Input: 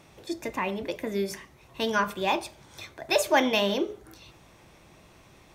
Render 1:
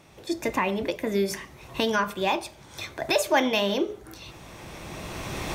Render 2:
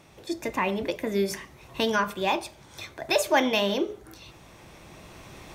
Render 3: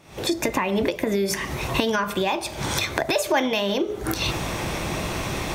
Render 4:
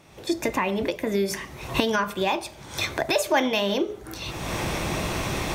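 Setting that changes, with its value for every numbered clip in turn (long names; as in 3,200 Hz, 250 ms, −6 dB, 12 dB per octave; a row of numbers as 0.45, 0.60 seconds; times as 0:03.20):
camcorder AGC, rising by: 13, 5.4, 90, 35 dB per second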